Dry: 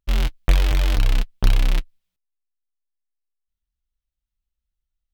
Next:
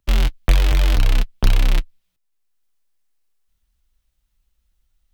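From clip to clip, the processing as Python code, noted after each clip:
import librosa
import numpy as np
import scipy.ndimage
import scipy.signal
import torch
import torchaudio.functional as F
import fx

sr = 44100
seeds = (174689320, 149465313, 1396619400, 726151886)

y = fx.band_squash(x, sr, depth_pct=40)
y = y * librosa.db_to_amplitude(2.5)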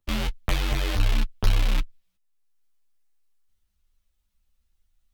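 y = fx.ensemble(x, sr)
y = y * librosa.db_to_amplitude(-1.0)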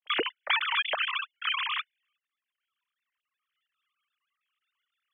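y = fx.sine_speech(x, sr)
y = y * librosa.db_to_amplitude(-9.0)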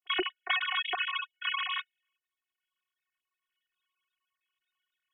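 y = fx.robotise(x, sr, hz=366.0)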